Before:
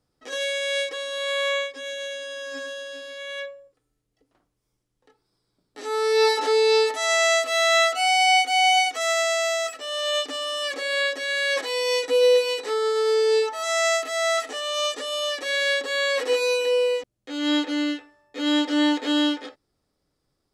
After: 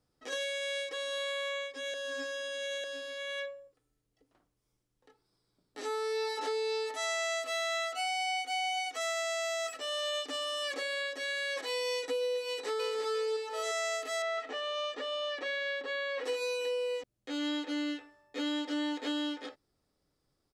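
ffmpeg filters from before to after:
ffmpeg -i in.wav -filter_complex "[0:a]asplit=2[link_01][link_02];[link_02]afade=type=in:start_time=12.44:duration=0.01,afade=type=out:start_time=13.01:duration=0.01,aecho=0:1:350|700|1050|1400|1750:1|0.35|0.1225|0.042875|0.0150062[link_03];[link_01][link_03]amix=inputs=2:normalize=0,asettb=1/sr,asplit=3[link_04][link_05][link_06];[link_04]atrim=end=14.224[link_07];[link_05]atrim=start=14.22:end=16.24,asetpts=PTS-STARTPTS,afade=type=in:duration=0.004:curve=qsin,afade=type=out:start_time=2.016:duration=0.004:curve=qsin,lowpass=3100[link_08];[link_06]atrim=start=16.236[link_09];[link_07][link_08]acrossfade=duration=0.004:curve1=hsin:curve2=qsin[link_10];[link_10][link_09]acrossfade=duration=0.004:curve1=qsin:curve2=hsin,asplit=3[link_11][link_12][link_13];[link_11]atrim=end=1.942[link_14];[link_12]atrim=start=1.938:end=2.842,asetpts=PTS-STARTPTS,areverse[link_15];[link_13]atrim=start=2.838[link_16];[link_14][link_15]acrossfade=duration=0.004:curve1=hsin:curve2=hsin[link_17];[link_17][link_16]acrossfade=duration=0.004:curve1=hsin:curve2=hsin,acompressor=threshold=-28dB:ratio=6,volume=-3.5dB" out.wav

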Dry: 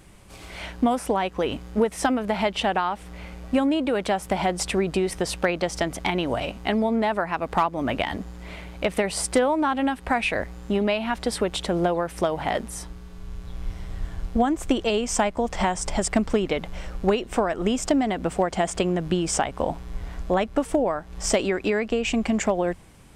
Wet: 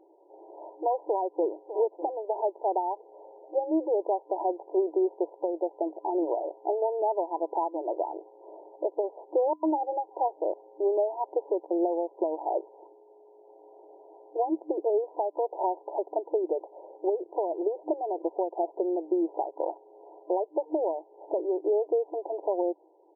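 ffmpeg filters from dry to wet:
ffmpeg -i in.wav -filter_complex "[0:a]asplit=2[link_01][link_02];[link_02]afade=type=in:start_time=1.06:duration=0.01,afade=type=out:start_time=1.81:duration=0.01,aecho=0:1:600|1200:0.199526|0.0299289[link_03];[link_01][link_03]amix=inputs=2:normalize=0,asettb=1/sr,asplit=3[link_04][link_05][link_06];[link_04]atrim=end=9.534[link_07];[link_05]atrim=start=9.53:end=11.71,asetpts=PTS-STARTPTS,afade=type=in:duration=0.004:curve=qsin,afade=type=out:start_time=2.176:duration=0.004:curve=qsin,acrossover=split=1900[link_08][link_09];[link_08]adelay=100[link_10];[link_10][link_09]amix=inputs=2:normalize=0,atrim=end_sample=96138[link_11];[link_06]atrim=start=11.706[link_12];[link_07][link_11]acrossfade=duration=0.004:curve1=hsin:curve2=qsin[link_13];[link_13][link_12]acrossfade=duration=0.004:curve1=qsin:curve2=hsin,afftfilt=real='re*between(b*sr/4096,310,1000)':imag='im*between(b*sr/4096,310,1000)':win_size=4096:overlap=0.75,lowshelf=frequency=450:gain=7,alimiter=limit=-14dB:level=0:latency=1:release=443,volume=-3dB" out.wav

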